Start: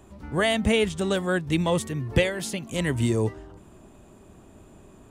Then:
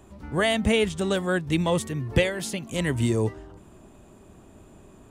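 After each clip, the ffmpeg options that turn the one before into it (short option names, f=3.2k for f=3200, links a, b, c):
-af anull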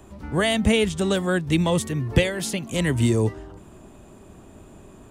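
-filter_complex "[0:a]acrossover=split=320|3000[a][b][c];[b]acompressor=threshold=-32dB:ratio=1.5[d];[a][d][c]amix=inputs=3:normalize=0,volume=4dB"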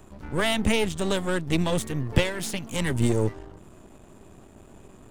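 -af "aeval=exprs='if(lt(val(0),0),0.251*val(0),val(0))':c=same"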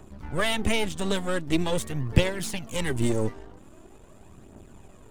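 -af "aphaser=in_gain=1:out_gain=1:delay=4.6:decay=0.41:speed=0.44:type=triangular,volume=-2dB"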